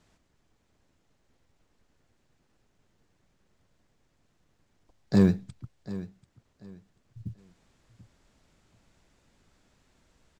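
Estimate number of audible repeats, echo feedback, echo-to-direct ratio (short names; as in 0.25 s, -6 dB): 2, 26%, -15.5 dB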